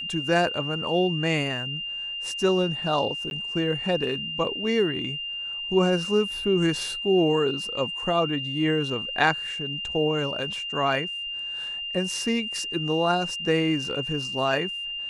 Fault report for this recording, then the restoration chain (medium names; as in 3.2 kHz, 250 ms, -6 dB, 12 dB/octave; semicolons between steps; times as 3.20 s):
whine 2.8 kHz -30 dBFS
3.30–3.31 s: dropout 11 ms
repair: band-stop 2.8 kHz, Q 30; interpolate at 3.30 s, 11 ms